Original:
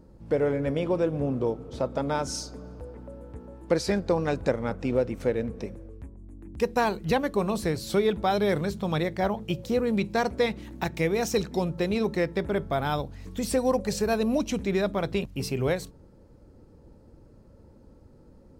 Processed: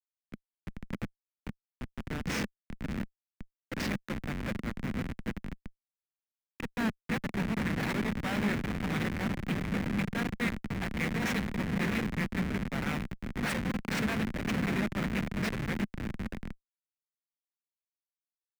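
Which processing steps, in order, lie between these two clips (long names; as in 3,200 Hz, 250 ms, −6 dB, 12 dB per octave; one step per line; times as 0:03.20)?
guitar amp tone stack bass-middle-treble 10-0-10
on a send: feedback delay with all-pass diffusion 609 ms, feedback 74%, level −4 dB
on the sum: comparator with hysteresis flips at −32.5 dBFS
parametric band 2,000 Hz +13.5 dB 1.4 octaves
hollow resonant body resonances 210 Hz, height 16 dB, ringing for 30 ms
multiband upward and downward expander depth 40%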